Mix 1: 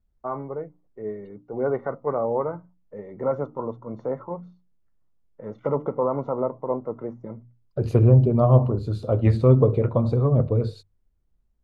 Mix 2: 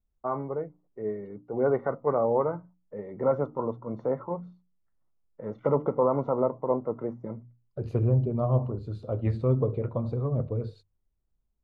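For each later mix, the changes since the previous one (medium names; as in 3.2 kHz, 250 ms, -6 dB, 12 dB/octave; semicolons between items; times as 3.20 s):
second voice -8.5 dB; master: add low-pass 3.5 kHz 6 dB/octave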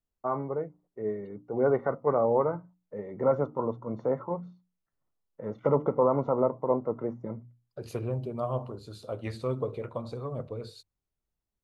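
second voice: add tilt EQ +3.5 dB/octave; master: remove low-pass 3.5 kHz 6 dB/octave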